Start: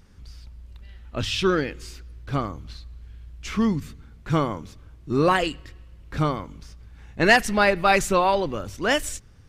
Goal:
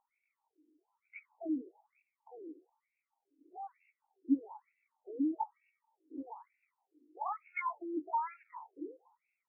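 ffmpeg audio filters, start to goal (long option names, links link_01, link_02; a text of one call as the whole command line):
ffmpeg -i in.wav -filter_complex "[0:a]asetrate=76340,aresample=44100,atempo=0.577676,asplit=3[link_01][link_02][link_03];[link_01]bandpass=frequency=300:width_type=q:width=8,volume=0dB[link_04];[link_02]bandpass=frequency=870:width_type=q:width=8,volume=-6dB[link_05];[link_03]bandpass=frequency=2240:width_type=q:width=8,volume=-9dB[link_06];[link_04][link_05][link_06]amix=inputs=3:normalize=0,afftfilt=real='re*between(b*sr/1024,360*pow(2000/360,0.5+0.5*sin(2*PI*1.1*pts/sr))/1.41,360*pow(2000/360,0.5+0.5*sin(2*PI*1.1*pts/sr))*1.41)':imag='im*between(b*sr/1024,360*pow(2000/360,0.5+0.5*sin(2*PI*1.1*pts/sr))/1.41,360*pow(2000/360,0.5+0.5*sin(2*PI*1.1*pts/sr))*1.41)':win_size=1024:overlap=0.75,volume=1dB" out.wav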